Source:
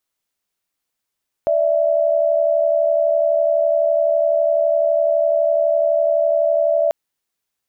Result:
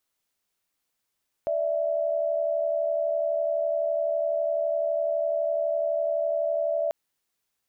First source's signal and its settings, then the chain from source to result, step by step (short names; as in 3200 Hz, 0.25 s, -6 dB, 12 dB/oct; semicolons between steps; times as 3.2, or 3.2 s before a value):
chord D5/E5 sine, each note -16.5 dBFS 5.44 s
limiter -20.5 dBFS